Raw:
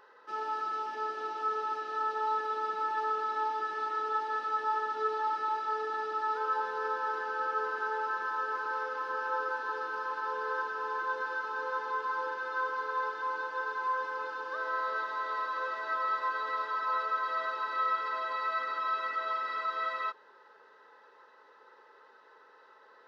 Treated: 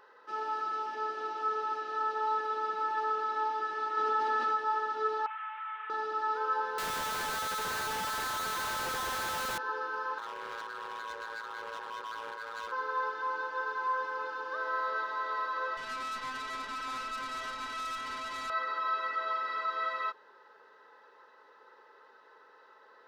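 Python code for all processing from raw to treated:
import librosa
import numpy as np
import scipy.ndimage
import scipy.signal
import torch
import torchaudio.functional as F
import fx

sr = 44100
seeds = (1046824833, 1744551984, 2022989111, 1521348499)

y = fx.chain(x, sr, fx.peak_eq(hz=240.0, db=8.5, octaves=0.28),
    fx.env_flatten(amount_pct=70), at=(3.97, 4.56))
y = fx.chain(y, sr, fx.delta_mod(bps=16000, step_db=-40.5),
    fx.highpass(hz=1100.0, slope=24),
    fx.air_absorb(metres=180.0), at=(5.26, 5.9))
y = fx.chain(y, sr, fx.highpass(hz=580.0, slope=12),
    fx.schmitt(flips_db=-50.0), at=(6.78, 9.58))
y = fx.chain(y, sr, fx.clip_hard(threshold_db=-35.0),
    fx.ring_mod(carrier_hz=56.0),
    fx.low_shelf(hz=180.0, db=-11.5), at=(10.18, 12.72))
y = fx.chain(y, sr, fx.tilt_eq(slope=4.0),
    fx.tube_stage(drive_db=35.0, bias=0.75), at=(15.77, 18.5))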